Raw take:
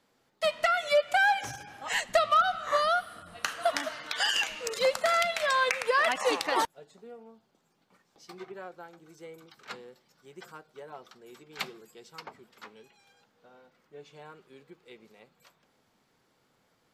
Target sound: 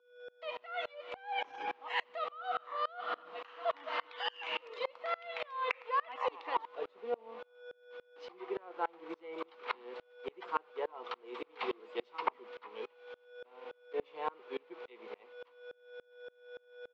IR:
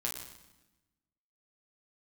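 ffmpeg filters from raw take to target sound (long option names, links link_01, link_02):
-filter_complex "[0:a]agate=range=-33dB:threshold=-53dB:ratio=3:detection=peak,acontrast=65,alimiter=limit=-16.5dB:level=0:latency=1:release=115,areverse,acompressor=threshold=-37dB:ratio=10,areverse,aeval=exprs='val(0)+0.00398*sin(2*PI*490*n/s)':channel_layout=same,aeval=exprs='val(0)*gte(abs(val(0)),0.00299)':channel_layout=same,highpass=frequency=320:width=0.5412,highpass=frequency=320:width=1.3066,equalizer=frequency=570:width_type=q:width=4:gain=-5,equalizer=frequency=1000:width_type=q:width=4:gain=8,equalizer=frequency=1600:width_type=q:width=4:gain=-7,lowpass=frequency=3200:width=0.5412,lowpass=frequency=3200:width=1.3066,asplit=5[link_01][link_02][link_03][link_04][link_05];[link_02]adelay=98,afreqshift=130,volume=-22.5dB[link_06];[link_03]adelay=196,afreqshift=260,volume=-27.7dB[link_07];[link_04]adelay=294,afreqshift=390,volume=-32.9dB[link_08];[link_05]adelay=392,afreqshift=520,volume=-38.1dB[link_09];[link_01][link_06][link_07][link_08][link_09]amix=inputs=5:normalize=0,aeval=exprs='val(0)*pow(10,-29*if(lt(mod(-3.5*n/s,1),2*abs(-3.5)/1000),1-mod(-3.5*n/s,1)/(2*abs(-3.5)/1000),(mod(-3.5*n/s,1)-2*abs(-3.5)/1000)/(1-2*abs(-3.5)/1000))/20)':channel_layout=same,volume=10.5dB"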